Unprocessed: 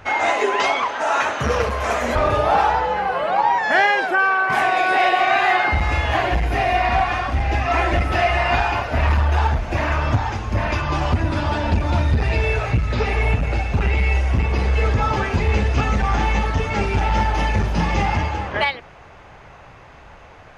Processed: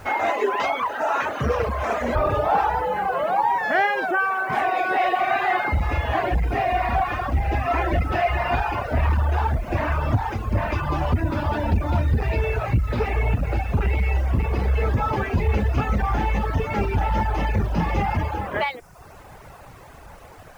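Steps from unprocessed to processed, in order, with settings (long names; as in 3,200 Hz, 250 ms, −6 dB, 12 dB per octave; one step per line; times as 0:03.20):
in parallel at 0 dB: brickwall limiter −18 dBFS, peak gain reduction 12 dB
on the sum: high-shelf EQ 2,600 Hz −12 dB
bit reduction 8 bits
reverb reduction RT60 0.73 s
level −3.5 dB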